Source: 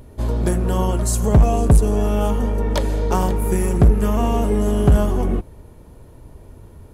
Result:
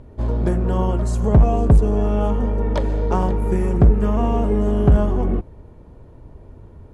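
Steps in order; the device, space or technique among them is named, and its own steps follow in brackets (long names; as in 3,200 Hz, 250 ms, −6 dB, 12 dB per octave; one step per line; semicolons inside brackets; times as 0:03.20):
through cloth (low-pass filter 8,100 Hz 12 dB per octave; high-shelf EQ 3,000 Hz −13.5 dB)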